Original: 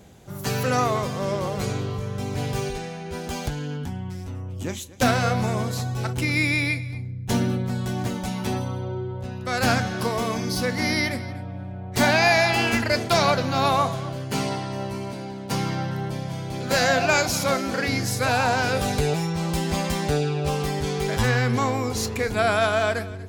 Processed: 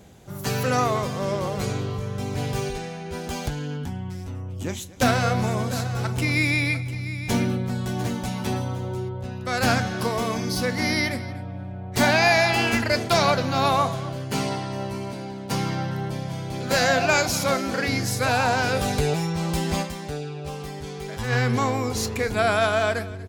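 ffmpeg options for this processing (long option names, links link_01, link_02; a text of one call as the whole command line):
ffmpeg -i in.wav -filter_complex "[0:a]asplit=3[link_01][link_02][link_03];[link_01]afade=type=out:start_time=4.65:duration=0.02[link_04];[link_02]aecho=1:1:699:0.224,afade=type=in:start_time=4.65:duration=0.02,afade=type=out:start_time=9.08:duration=0.02[link_05];[link_03]afade=type=in:start_time=9.08:duration=0.02[link_06];[link_04][link_05][link_06]amix=inputs=3:normalize=0,asplit=3[link_07][link_08][link_09];[link_07]atrim=end=20.11,asetpts=PTS-STARTPTS,afade=type=out:start_time=19.82:duration=0.29:curve=exp:silence=0.375837[link_10];[link_08]atrim=start=20.11:end=21.04,asetpts=PTS-STARTPTS,volume=-8.5dB[link_11];[link_09]atrim=start=21.04,asetpts=PTS-STARTPTS,afade=type=in:duration=0.29:curve=exp:silence=0.375837[link_12];[link_10][link_11][link_12]concat=n=3:v=0:a=1" out.wav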